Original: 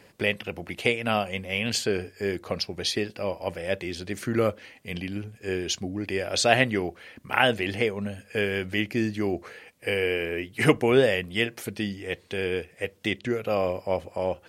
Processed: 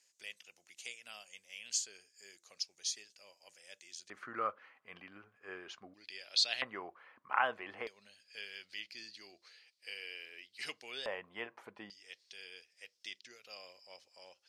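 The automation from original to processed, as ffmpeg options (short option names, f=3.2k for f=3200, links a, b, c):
-af "asetnsamples=n=441:p=0,asendcmd='4.1 bandpass f 1200;5.94 bandpass f 4300;6.62 bandpass f 1100;7.87 bandpass f 4600;11.06 bandpass f 1000;11.9 bandpass f 5200',bandpass=f=6.6k:t=q:w=4.1:csg=0"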